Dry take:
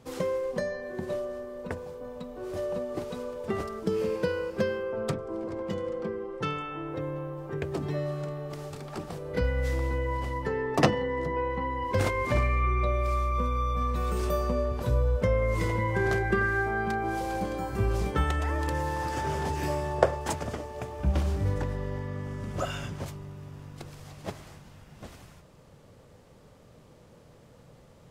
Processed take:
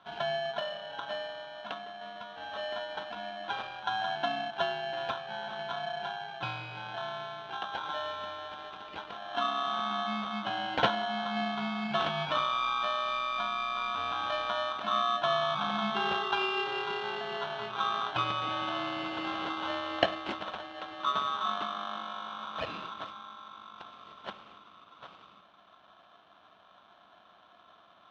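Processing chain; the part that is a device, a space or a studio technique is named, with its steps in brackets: ring modulator pedal into a guitar cabinet (polarity switched at an audio rate 1.2 kHz; cabinet simulation 79–3600 Hz, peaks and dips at 200 Hz +8 dB, 290 Hz +3 dB, 690 Hz +5 dB, 1.9 kHz -9 dB, 3 kHz +5 dB); trim -4.5 dB

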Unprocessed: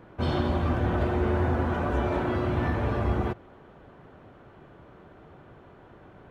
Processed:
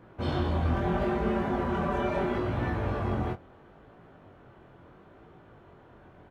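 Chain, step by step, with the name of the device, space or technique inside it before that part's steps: 0.73–2.38 s: comb 5.1 ms, depth 71%; double-tracked vocal (doubling 23 ms -13.5 dB; chorus 0.75 Hz, delay 17.5 ms, depth 6.9 ms)

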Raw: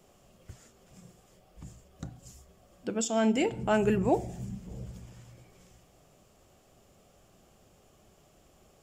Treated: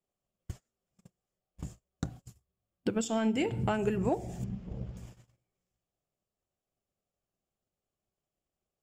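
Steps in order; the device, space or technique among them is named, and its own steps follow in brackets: 4.44–4.97 s: distance through air 210 m; gate -48 dBFS, range -30 dB; drum-bus smash (transient shaper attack +8 dB, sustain +1 dB; compression 12:1, threshold -24 dBFS, peak gain reduction 9.5 dB; saturation -15 dBFS, distortion -26 dB); 2.23–3.79 s: fifteen-band graphic EQ 100 Hz +11 dB, 630 Hz -4 dB, 6.3 kHz -6 dB

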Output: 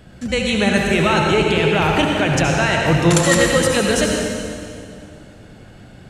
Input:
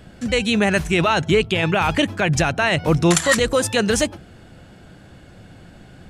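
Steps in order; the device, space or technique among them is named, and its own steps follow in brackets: stairwell (reverberation RT60 2.4 s, pre-delay 66 ms, DRR -0.5 dB); trim -1 dB

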